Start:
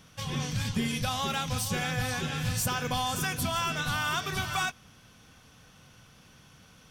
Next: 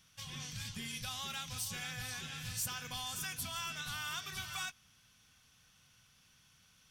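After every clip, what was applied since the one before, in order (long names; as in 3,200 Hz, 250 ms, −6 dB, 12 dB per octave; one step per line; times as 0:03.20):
guitar amp tone stack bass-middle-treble 5-5-5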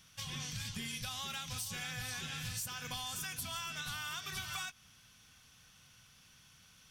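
downward compressor, threshold −42 dBFS, peak gain reduction 8.5 dB
level +4.5 dB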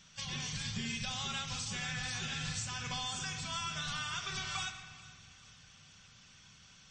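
feedback echo with a high-pass in the loop 436 ms, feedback 51%, high-pass 930 Hz, level −19 dB
rectangular room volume 2,200 cubic metres, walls mixed, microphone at 1.2 metres
level +2 dB
MP3 32 kbit/s 24,000 Hz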